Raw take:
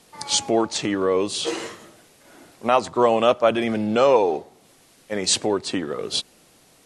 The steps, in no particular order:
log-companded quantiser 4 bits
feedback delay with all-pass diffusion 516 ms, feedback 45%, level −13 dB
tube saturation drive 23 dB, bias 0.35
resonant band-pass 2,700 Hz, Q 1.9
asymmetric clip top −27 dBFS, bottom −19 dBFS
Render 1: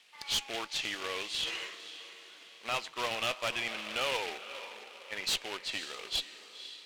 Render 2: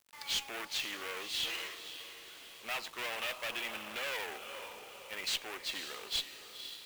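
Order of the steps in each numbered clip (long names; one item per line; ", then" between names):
feedback delay with all-pass diffusion, then log-companded quantiser, then resonant band-pass, then asymmetric clip, then tube saturation
feedback delay with all-pass diffusion, then asymmetric clip, then resonant band-pass, then tube saturation, then log-companded quantiser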